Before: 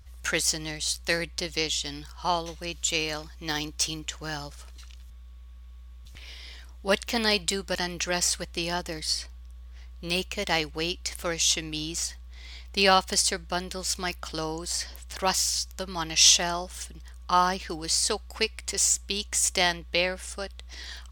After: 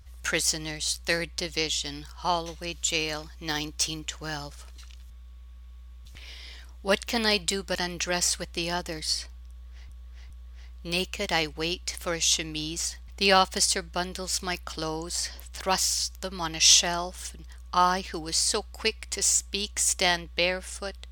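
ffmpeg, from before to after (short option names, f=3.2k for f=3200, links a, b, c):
-filter_complex "[0:a]asplit=4[a][b][c][d];[a]atrim=end=9.892[e];[b]atrim=start=9.478:end=9.892[f];[c]atrim=start=9.478:end=12.262[g];[d]atrim=start=12.638[h];[e][f]acrossfade=d=0.004:c1=hsin:c2=hsin[i];[i][g]acrossfade=d=0.004:c1=hsin:c2=hsin[j];[j][h]acrossfade=d=0.004:c1=hsin:c2=hsin"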